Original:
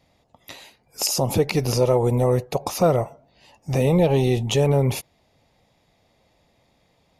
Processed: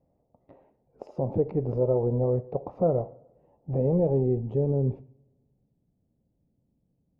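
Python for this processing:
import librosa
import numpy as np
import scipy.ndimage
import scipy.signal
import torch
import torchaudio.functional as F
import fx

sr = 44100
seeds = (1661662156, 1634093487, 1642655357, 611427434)

y = fx.wiener(x, sr, points=9)
y = fx.rev_double_slope(y, sr, seeds[0], early_s=0.54, late_s=1.6, knee_db=-16, drr_db=14.5)
y = fx.filter_sweep_lowpass(y, sr, from_hz=550.0, to_hz=250.0, start_s=3.89, end_s=5.77, q=1.2)
y = F.gain(torch.from_numpy(y), -7.0).numpy()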